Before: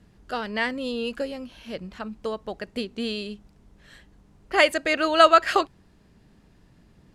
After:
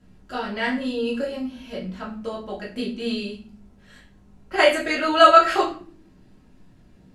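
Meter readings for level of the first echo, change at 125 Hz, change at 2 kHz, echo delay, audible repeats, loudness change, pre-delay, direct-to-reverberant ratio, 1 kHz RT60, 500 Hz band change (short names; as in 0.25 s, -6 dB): none, n/a, +1.0 dB, none, none, +2.5 dB, 3 ms, -6.0 dB, 0.40 s, +2.5 dB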